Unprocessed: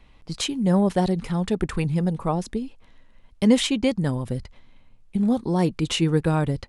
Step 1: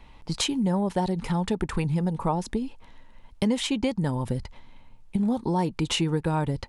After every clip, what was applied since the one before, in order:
downward compressor 4 to 1, threshold −26 dBFS, peak gain reduction 12 dB
parametric band 900 Hz +9.5 dB 0.22 octaves
level +3 dB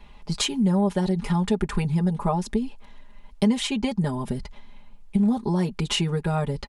comb filter 4.9 ms, depth 89%
level −1 dB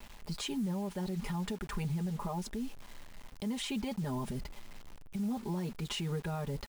downward compressor 4 to 1, threshold −24 dBFS, peak gain reduction 7.5 dB
brickwall limiter −23.5 dBFS, peak gain reduction 10.5 dB
bit reduction 8 bits
level −5 dB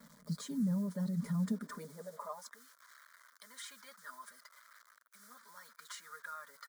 spectral magnitudes quantised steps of 15 dB
phaser with its sweep stopped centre 540 Hz, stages 8
high-pass filter sweep 150 Hz → 1,400 Hz, 0:01.35–0:02.64
level −2.5 dB

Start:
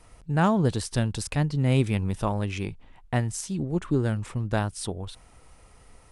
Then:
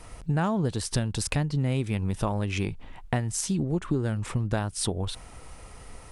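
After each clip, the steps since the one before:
downward compressor 5 to 1, threshold −32 dBFS, peak gain reduction 14.5 dB
level +8 dB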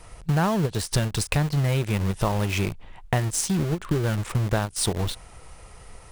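parametric band 260 Hz −10 dB 0.31 octaves
in parallel at −4 dB: bit reduction 5 bits
on the sum: every ending faded ahead of time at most 340 dB per second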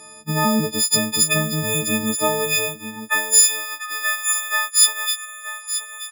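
every partial snapped to a pitch grid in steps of 6 semitones
high-pass filter sweep 220 Hz → 1,500 Hz, 0:02.06–0:03.22
single-tap delay 929 ms −11.5 dB
level −1 dB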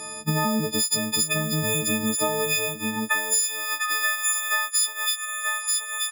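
downward compressor 6 to 1, threshold −28 dBFS, peak gain reduction 18 dB
level +6.5 dB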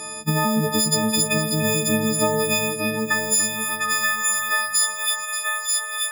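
echo machine with several playback heads 291 ms, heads first and second, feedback 44%, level −10 dB
level +2.5 dB

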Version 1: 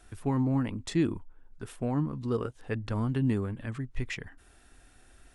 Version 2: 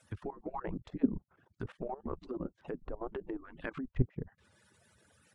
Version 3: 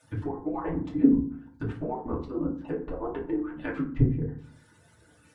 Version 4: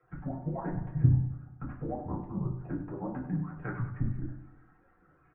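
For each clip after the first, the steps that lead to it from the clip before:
harmonic-percussive split with one part muted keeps percussive; treble cut that deepens with the level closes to 450 Hz, closed at −35 dBFS; output level in coarse steps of 15 dB; level +8 dB
feedback delay network reverb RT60 0.47 s, low-frequency decay 1.5×, high-frequency decay 0.5×, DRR −5.5 dB
on a send: repeating echo 97 ms, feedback 57%, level −12 dB; on the sum: single-sideband voice off tune −150 Hz 160–2,100 Hz; level −3 dB

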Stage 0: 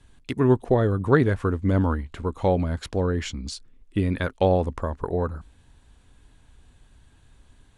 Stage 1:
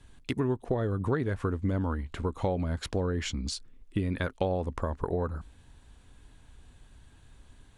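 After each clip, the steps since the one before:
downward compressor 5 to 1, threshold −26 dBFS, peak gain reduction 13 dB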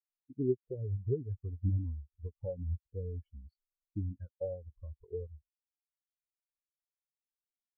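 every bin expanded away from the loudest bin 4 to 1
level −5.5 dB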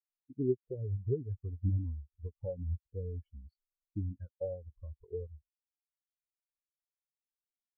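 no processing that can be heard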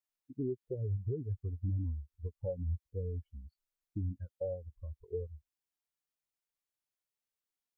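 brickwall limiter −29.5 dBFS, peak gain reduction 10 dB
level +1.5 dB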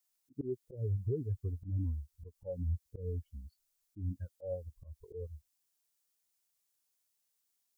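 bass and treble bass −2 dB, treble +10 dB
volume swells 129 ms
level +3 dB

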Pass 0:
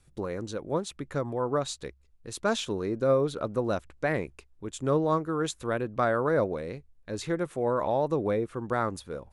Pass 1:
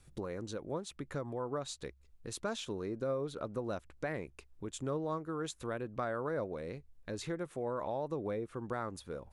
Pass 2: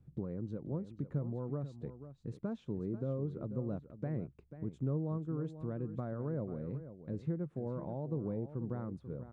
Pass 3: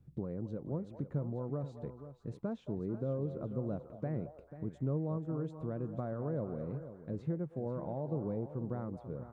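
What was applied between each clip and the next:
downward compressor 2 to 1, threshold −44 dBFS, peak gain reduction 13.5 dB; level +1 dB
resonant band-pass 150 Hz, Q 1.5; single-tap delay 489 ms −12 dB; level +8 dB
echo through a band-pass that steps 221 ms, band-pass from 720 Hz, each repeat 0.7 octaves, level −8.5 dB; dynamic equaliser 680 Hz, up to +4 dB, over −57 dBFS, Q 1.5

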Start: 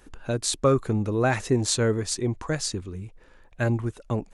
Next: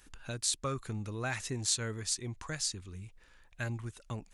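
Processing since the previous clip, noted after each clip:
guitar amp tone stack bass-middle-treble 5-5-5
in parallel at +1 dB: downward compressor, threshold −45 dBFS, peak gain reduction 16 dB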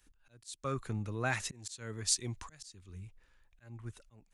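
volume swells 342 ms
multiband upward and downward expander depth 40%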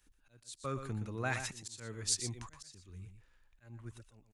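single-tap delay 120 ms −9 dB
level −2.5 dB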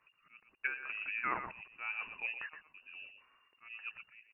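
three-way crossover with the lows and the highs turned down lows −19 dB, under 180 Hz, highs −22 dB, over 2,000 Hz
voice inversion scrambler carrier 2,800 Hz
treble cut that deepens with the level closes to 1,200 Hz, closed at −38 dBFS
level +8.5 dB

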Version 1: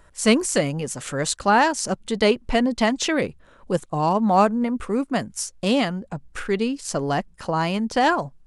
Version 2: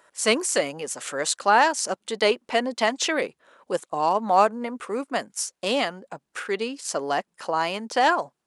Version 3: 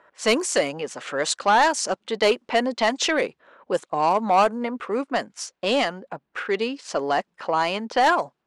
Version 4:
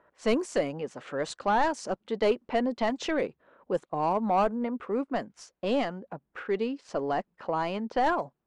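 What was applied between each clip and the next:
high-pass filter 420 Hz 12 dB per octave
soft clipping −14 dBFS, distortion −14 dB; low-pass that shuts in the quiet parts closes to 2,100 Hz, open at −18 dBFS; level +3.5 dB
spectral tilt −3 dB per octave; level −8 dB

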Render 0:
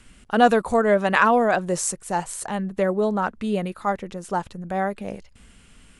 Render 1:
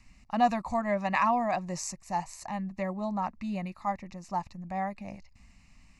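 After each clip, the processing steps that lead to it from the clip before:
phaser with its sweep stopped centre 2,200 Hz, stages 8
level −5 dB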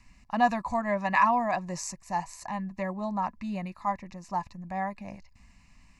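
hollow resonant body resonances 1,000/1,700 Hz, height 9 dB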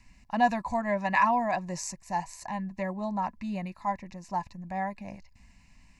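notch filter 1,200 Hz, Q 5.5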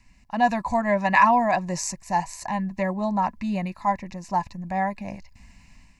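automatic gain control gain up to 7 dB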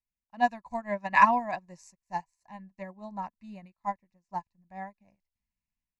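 expander for the loud parts 2.5 to 1, over −40 dBFS

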